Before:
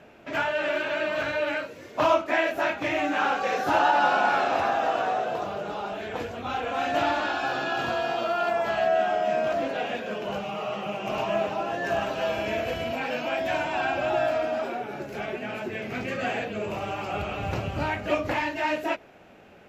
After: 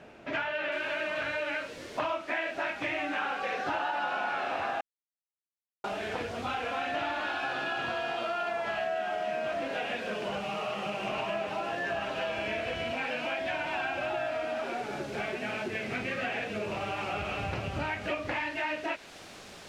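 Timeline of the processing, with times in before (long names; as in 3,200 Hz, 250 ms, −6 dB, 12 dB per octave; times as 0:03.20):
0:00.72: noise floor change −65 dB −44 dB
0:04.81–0:05.84: silence
whole clip: dynamic equaliser 2,300 Hz, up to +6 dB, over −40 dBFS, Q 0.77; low-pass filter 4,900 Hz 12 dB per octave; downward compressor 4 to 1, threshold −31 dBFS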